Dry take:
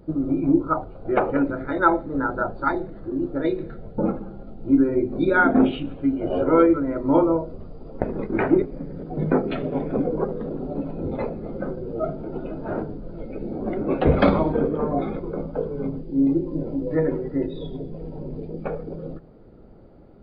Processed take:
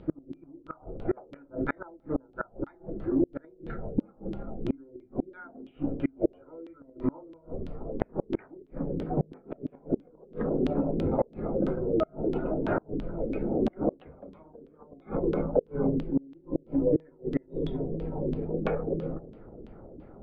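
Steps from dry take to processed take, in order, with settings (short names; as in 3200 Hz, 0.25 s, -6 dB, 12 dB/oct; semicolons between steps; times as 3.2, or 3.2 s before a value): flipped gate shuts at -16 dBFS, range -33 dB; LFO low-pass saw down 3 Hz 280–3400 Hz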